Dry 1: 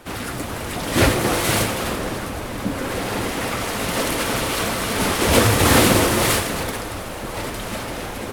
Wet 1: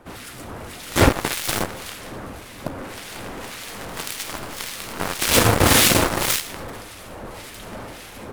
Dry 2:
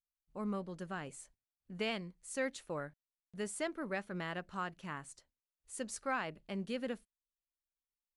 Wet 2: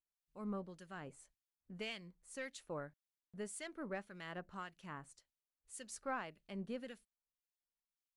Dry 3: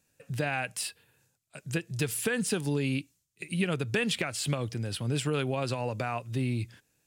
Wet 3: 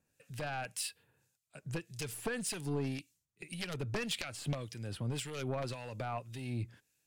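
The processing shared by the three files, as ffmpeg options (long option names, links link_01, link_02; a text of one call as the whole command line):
ffmpeg -i in.wav -filter_complex "[0:a]aeval=exprs='0.841*(cos(1*acos(clip(val(0)/0.841,-1,1)))-cos(1*PI/2))+0.0237*(cos(3*acos(clip(val(0)/0.841,-1,1)))-cos(3*PI/2))+0.0335*(cos(5*acos(clip(val(0)/0.841,-1,1)))-cos(5*PI/2))+0.168*(cos(7*acos(clip(val(0)/0.841,-1,1)))-cos(7*PI/2))+0.015*(cos(8*acos(clip(val(0)/0.841,-1,1)))-cos(8*PI/2))':channel_layout=same,asoftclip=type=tanh:threshold=-9dB,acrossover=split=1700[link_01][link_02];[link_01]aeval=exprs='val(0)*(1-0.7/2+0.7/2*cos(2*PI*1.8*n/s))':channel_layout=same[link_03];[link_02]aeval=exprs='val(0)*(1-0.7/2-0.7/2*cos(2*PI*1.8*n/s))':channel_layout=same[link_04];[link_03][link_04]amix=inputs=2:normalize=0,volume=8dB" out.wav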